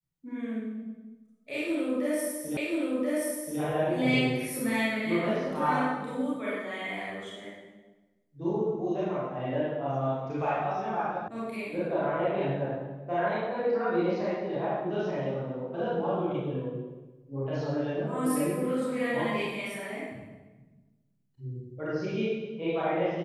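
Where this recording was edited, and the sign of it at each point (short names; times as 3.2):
2.57 repeat of the last 1.03 s
11.28 sound cut off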